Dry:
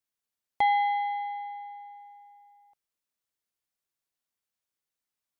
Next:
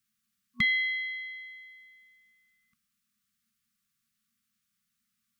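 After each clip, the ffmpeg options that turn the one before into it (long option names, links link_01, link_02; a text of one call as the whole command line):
ffmpeg -i in.wav -af "afftfilt=real='re*(1-between(b*sr/4096,240,1100))':imag='im*(1-between(b*sr/4096,240,1100))':win_size=4096:overlap=0.75,equalizer=frequency=240:width=1.1:gain=14.5,volume=8dB" out.wav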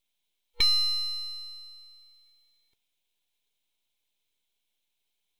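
ffmpeg -i in.wav -af "aeval=exprs='abs(val(0))':channel_layout=same,superequalizer=10b=0.447:11b=0.631:12b=2:13b=3.16" out.wav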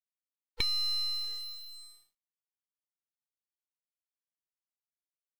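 ffmpeg -i in.wav -af "acompressor=threshold=-27dB:ratio=10,acrusher=bits=7:mix=0:aa=0.5" out.wav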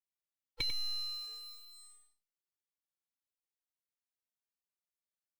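ffmpeg -i in.wav -filter_complex "[0:a]aecho=1:1:94:0.355,asplit=2[link_01][link_02];[link_02]adelay=3,afreqshift=-0.38[link_03];[link_01][link_03]amix=inputs=2:normalize=1,volume=-2dB" out.wav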